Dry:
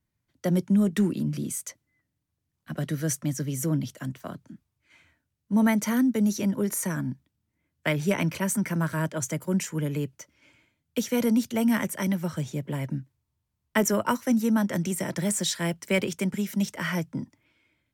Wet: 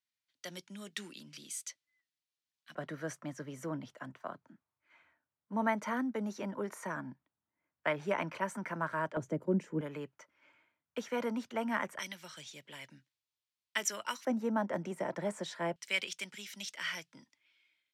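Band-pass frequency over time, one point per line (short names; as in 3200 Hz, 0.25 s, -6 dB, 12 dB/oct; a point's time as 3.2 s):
band-pass, Q 1.2
3800 Hz
from 2.75 s 990 Hz
from 9.17 s 390 Hz
from 9.81 s 1100 Hz
from 11.99 s 3700 Hz
from 14.25 s 770 Hz
from 15.76 s 3600 Hz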